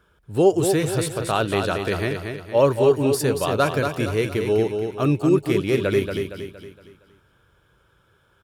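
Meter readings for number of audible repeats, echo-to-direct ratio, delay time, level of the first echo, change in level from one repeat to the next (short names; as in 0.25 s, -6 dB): 4, -5.0 dB, 0.232 s, -6.0 dB, -7.5 dB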